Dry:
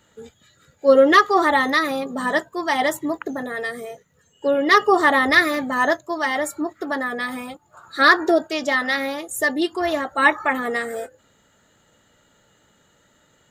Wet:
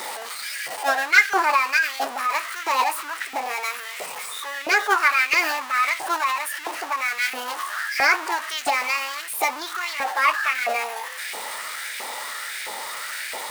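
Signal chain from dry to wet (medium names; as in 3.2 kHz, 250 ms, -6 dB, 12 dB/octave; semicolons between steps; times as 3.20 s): jump at every zero crossing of -19.5 dBFS; LFO high-pass saw up 1.5 Hz 500–1700 Hz; formant shift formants +4 st; trim -7.5 dB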